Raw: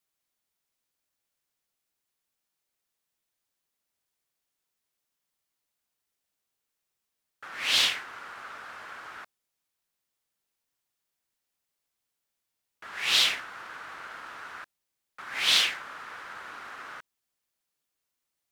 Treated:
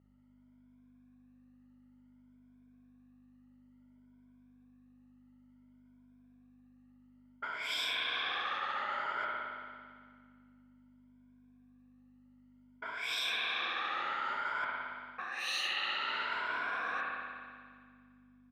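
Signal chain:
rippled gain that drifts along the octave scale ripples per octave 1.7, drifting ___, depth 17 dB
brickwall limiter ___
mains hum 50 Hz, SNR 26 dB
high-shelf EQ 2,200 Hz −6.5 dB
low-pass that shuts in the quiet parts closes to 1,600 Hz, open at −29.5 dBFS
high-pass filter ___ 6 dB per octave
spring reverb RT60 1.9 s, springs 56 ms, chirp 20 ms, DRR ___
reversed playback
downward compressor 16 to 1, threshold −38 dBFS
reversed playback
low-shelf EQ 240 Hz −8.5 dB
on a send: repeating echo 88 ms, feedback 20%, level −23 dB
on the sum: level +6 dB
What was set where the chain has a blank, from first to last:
+0.57 Hz, −11 dBFS, 130 Hz, 0.5 dB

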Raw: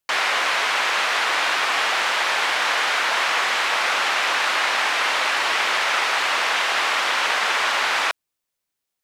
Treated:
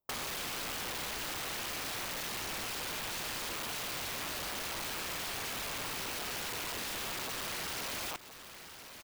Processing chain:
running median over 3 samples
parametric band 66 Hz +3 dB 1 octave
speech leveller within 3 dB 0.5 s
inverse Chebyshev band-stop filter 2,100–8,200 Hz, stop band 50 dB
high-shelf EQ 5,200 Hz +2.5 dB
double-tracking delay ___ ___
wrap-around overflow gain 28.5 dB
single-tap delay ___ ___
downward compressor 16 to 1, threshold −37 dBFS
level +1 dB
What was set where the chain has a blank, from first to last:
50 ms, −5 dB, 1,018 ms, −18 dB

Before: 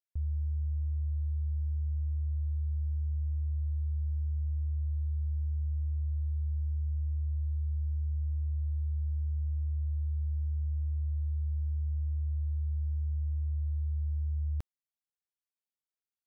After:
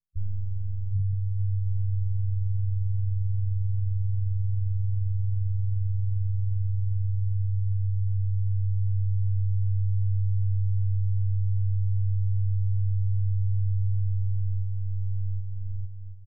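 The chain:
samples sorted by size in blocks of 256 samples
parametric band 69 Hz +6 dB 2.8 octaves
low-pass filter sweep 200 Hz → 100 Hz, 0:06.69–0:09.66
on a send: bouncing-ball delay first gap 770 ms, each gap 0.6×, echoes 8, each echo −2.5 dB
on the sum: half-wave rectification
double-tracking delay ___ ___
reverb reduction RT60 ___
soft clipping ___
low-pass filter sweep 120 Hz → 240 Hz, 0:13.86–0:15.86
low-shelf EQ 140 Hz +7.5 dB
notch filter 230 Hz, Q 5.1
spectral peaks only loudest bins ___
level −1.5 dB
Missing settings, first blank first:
20 ms, −4.5 dB, 1.6 s, −27 dBFS, 4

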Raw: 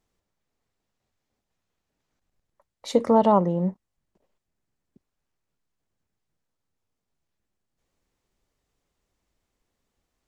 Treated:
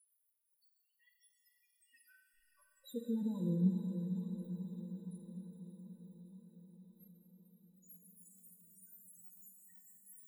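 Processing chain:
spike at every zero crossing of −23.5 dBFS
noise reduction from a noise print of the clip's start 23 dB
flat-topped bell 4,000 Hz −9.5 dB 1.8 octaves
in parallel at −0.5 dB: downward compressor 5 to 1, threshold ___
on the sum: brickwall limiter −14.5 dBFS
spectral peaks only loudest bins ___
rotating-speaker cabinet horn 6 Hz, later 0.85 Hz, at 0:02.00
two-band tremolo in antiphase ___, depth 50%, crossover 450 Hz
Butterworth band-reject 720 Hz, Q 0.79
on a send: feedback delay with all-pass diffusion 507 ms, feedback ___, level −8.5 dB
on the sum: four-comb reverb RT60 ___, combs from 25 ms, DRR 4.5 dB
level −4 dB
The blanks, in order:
−34 dBFS, 4, 2.2 Hz, 66%, 1.9 s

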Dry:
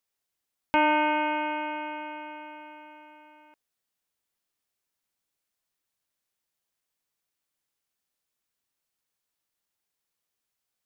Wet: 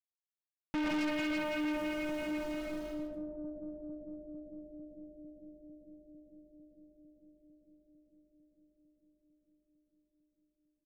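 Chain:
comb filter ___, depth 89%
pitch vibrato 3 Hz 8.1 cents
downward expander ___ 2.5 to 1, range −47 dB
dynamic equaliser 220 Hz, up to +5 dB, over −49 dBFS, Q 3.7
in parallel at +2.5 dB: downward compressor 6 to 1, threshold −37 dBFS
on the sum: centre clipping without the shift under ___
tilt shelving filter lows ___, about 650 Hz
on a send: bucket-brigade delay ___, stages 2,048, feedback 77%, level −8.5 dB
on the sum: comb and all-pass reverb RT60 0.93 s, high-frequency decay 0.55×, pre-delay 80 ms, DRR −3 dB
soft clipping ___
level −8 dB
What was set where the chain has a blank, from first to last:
6 ms, −45 dBFS, −33.5 dBFS, +8.5 dB, 450 ms, −23 dBFS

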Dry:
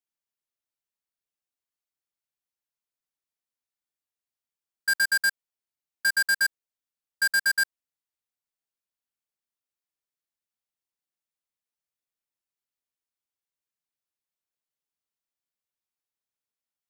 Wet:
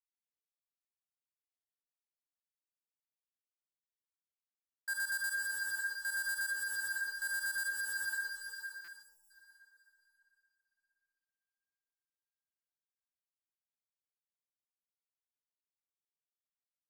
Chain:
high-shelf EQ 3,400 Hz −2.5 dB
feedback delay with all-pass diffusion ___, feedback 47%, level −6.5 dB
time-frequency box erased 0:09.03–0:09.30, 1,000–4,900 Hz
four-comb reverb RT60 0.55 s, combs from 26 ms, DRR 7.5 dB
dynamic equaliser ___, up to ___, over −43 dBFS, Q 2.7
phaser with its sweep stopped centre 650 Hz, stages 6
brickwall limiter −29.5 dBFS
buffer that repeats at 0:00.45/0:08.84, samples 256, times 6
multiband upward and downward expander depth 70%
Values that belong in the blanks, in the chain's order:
517 ms, 5,000 Hz, −5 dB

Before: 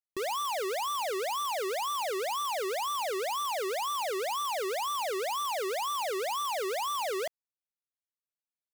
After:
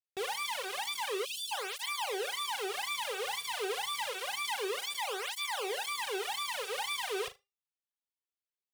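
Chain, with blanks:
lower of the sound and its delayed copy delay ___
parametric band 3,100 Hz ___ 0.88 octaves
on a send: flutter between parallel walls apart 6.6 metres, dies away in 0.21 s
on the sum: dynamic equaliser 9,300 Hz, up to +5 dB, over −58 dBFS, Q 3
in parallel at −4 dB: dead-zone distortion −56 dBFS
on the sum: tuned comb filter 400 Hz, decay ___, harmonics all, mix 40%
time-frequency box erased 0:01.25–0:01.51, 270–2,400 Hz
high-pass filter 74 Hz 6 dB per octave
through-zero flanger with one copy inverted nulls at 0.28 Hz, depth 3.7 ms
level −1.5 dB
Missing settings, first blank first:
2.3 ms, +7.5 dB, 0.29 s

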